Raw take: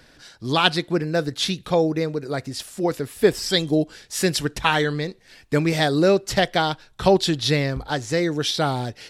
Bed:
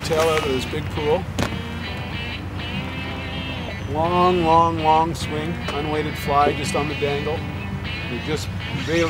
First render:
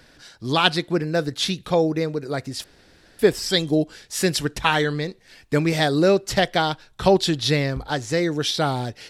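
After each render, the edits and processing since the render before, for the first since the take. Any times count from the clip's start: 2.64–3.19 s: room tone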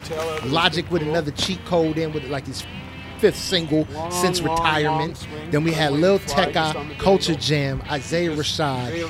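add bed -7.5 dB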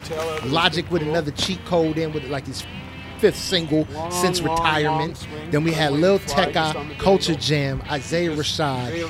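no audible change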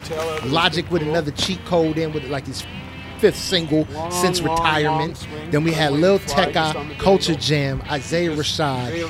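trim +1.5 dB; peak limiter -2 dBFS, peak gain reduction 1.5 dB

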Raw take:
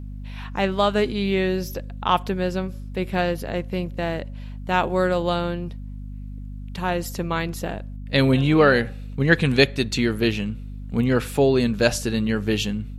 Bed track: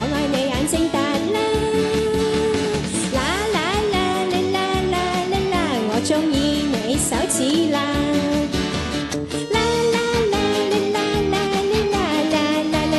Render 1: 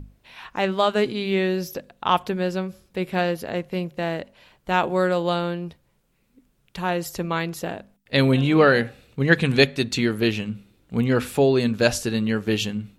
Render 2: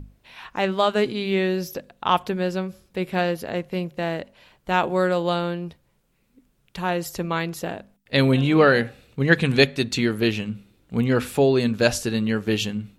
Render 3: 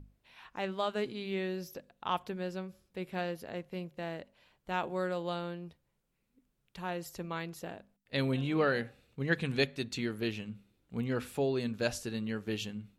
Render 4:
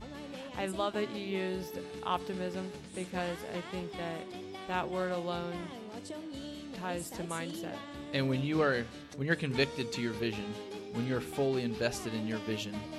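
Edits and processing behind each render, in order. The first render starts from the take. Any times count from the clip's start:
hum notches 50/100/150/200/250 Hz
no audible change
trim -13 dB
add bed track -24 dB

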